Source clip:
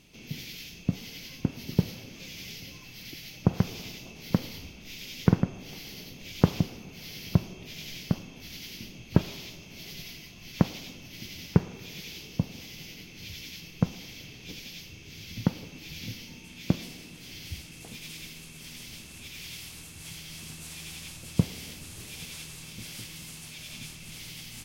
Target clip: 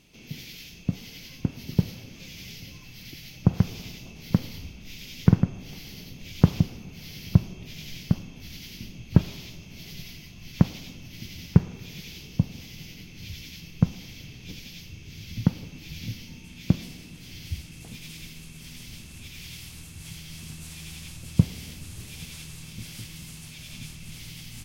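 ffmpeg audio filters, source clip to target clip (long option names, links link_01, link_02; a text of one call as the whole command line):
ffmpeg -i in.wav -af "asubboost=boost=2:cutoff=250,volume=-1dB" out.wav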